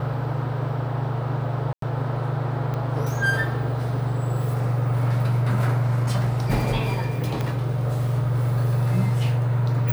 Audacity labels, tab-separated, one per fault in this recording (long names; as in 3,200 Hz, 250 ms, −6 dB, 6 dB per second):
1.730000	1.820000	drop-out 93 ms
2.740000	2.740000	click −18 dBFS
7.410000	7.410000	click −14 dBFS